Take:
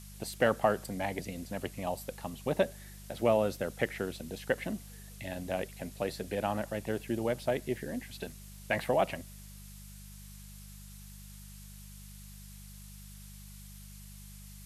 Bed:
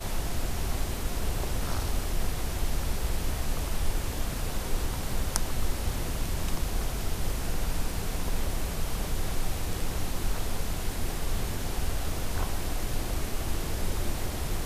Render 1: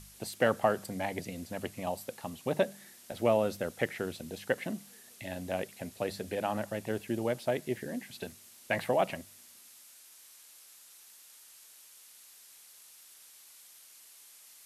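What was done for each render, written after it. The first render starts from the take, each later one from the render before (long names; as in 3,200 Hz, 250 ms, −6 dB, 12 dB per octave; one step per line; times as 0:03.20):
hum removal 50 Hz, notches 4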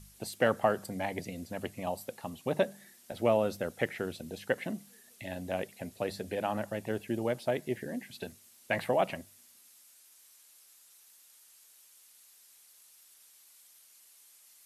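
broadband denoise 6 dB, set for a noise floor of −56 dBFS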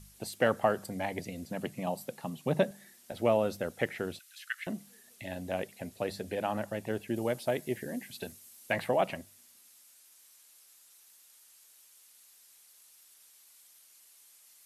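0:01.45–0:02.71: low shelf with overshoot 100 Hz −12.5 dB, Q 3
0:04.19–0:04.67: Butterworth high-pass 1,200 Hz 96 dB per octave
0:07.16–0:08.73: high-shelf EQ 7,100 Hz +7.5 dB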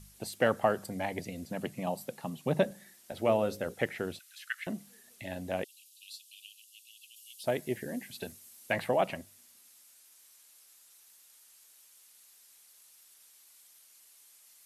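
0:02.63–0:03.74: mains-hum notches 60/120/180/240/300/360/420/480/540 Hz
0:05.64–0:07.44: Butterworth high-pass 2,700 Hz 96 dB per octave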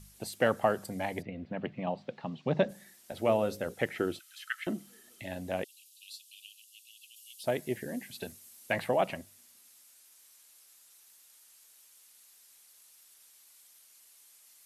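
0:01.21–0:02.68: low-pass filter 2,500 Hz → 5,400 Hz 24 dB per octave
0:03.95–0:05.22: hollow resonant body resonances 330/1,300/3,100 Hz, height 12 dB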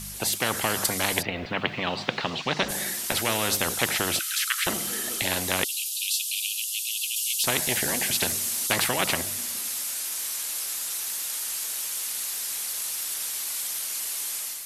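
automatic gain control gain up to 8 dB
every bin compressed towards the loudest bin 4 to 1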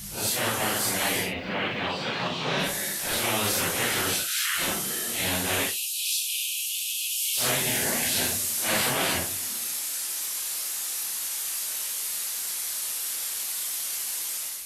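random phases in long frames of 200 ms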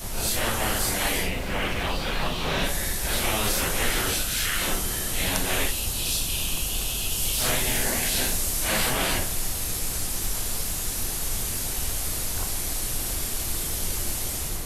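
mix in bed −2 dB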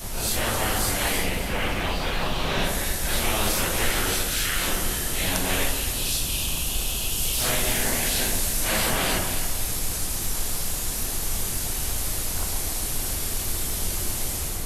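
delay that swaps between a low-pass and a high-pass 134 ms, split 1,400 Hz, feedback 61%, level −5 dB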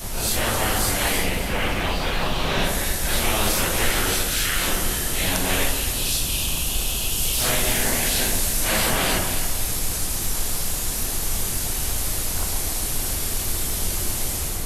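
level +2.5 dB
brickwall limiter −3 dBFS, peak gain reduction 1 dB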